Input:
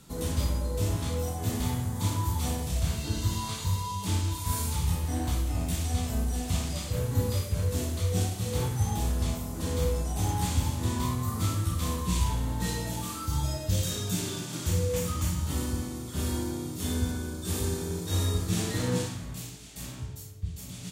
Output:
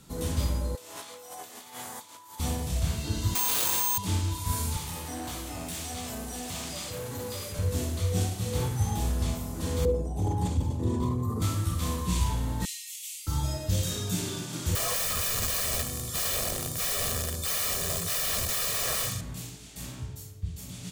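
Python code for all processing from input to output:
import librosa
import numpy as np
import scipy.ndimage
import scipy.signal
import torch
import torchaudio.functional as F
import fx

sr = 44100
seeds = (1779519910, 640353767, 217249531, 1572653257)

y = fx.chain(x, sr, fx.highpass(hz=650.0, slope=12),
    fx.over_compress(threshold_db=-43.0, ratio=-0.5), at=(0.75, 2.4))
y = fx.chain(y, sr, fx.highpass(hz=450.0, slope=12),
    fx.resample_bad(factor=6, down='none', up='zero_stuff'),
    fx.env_flatten(amount_pct=100), at=(3.35, 3.98))
y = fx.chain(y, sr, fx.highpass(hz=410.0, slope=6),
    fx.clip_hard(threshold_db=-32.5),
    fx.env_flatten(amount_pct=50), at=(4.77, 7.59))
y = fx.chain(y, sr, fx.envelope_sharpen(power=1.5),
    fx.highpass(hz=59.0, slope=12),
    fx.peak_eq(hz=450.0, db=11.5, octaves=1.1), at=(9.85, 11.42))
y = fx.chain(y, sr, fx.cheby_ripple_highpass(hz=2000.0, ripple_db=3),
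    fx.high_shelf(hz=9000.0, db=4.5), at=(12.65, 13.27))
y = fx.chain(y, sr, fx.high_shelf(hz=4600.0, db=11.0),
    fx.overflow_wrap(gain_db=26.0),
    fx.comb(ms=1.7, depth=0.73), at=(14.75, 19.21))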